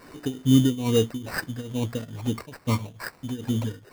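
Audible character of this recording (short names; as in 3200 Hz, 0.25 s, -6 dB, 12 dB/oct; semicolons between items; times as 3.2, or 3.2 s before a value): a quantiser's noise floor 10-bit, dither triangular; tremolo triangle 2.3 Hz, depth 90%; aliases and images of a low sample rate 3300 Hz, jitter 0%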